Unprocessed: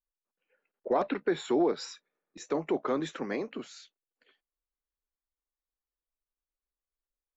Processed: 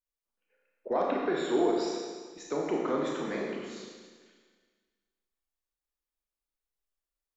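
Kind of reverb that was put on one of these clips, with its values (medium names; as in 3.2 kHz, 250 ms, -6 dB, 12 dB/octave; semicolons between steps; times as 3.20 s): Schroeder reverb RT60 1.6 s, combs from 27 ms, DRR -2 dB; trim -3.5 dB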